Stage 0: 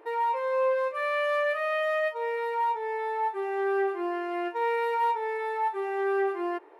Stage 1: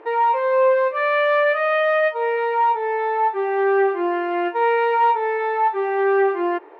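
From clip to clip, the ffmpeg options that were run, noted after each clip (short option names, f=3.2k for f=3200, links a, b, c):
-af "lowpass=3.5k,volume=9dB"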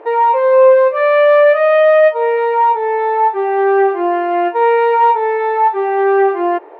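-af "equalizer=f=620:w=1.3:g=8.5,volume=2dB"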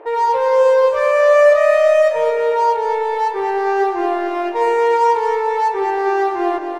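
-filter_complex "[0:a]asplit=2[a][b];[b]aeval=exprs='0.106*(abs(mod(val(0)/0.106+3,4)-2)-1)':c=same,volume=-12dB[c];[a][c]amix=inputs=2:normalize=0,flanger=delay=7.2:depth=9.9:regen=89:speed=0.52:shape=triangular,aecho=1:1:223|446|669|892|1115|1338:0.447|0.21|0.0987|0.0464|0.0218|0.0102"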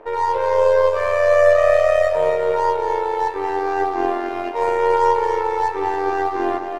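-af "aeval=exprs='if(lt(val(0),0),0.708*val(0),val(0))':c=same,aecho=1:1:279:0.376,tremolo=f=89:d=0.571"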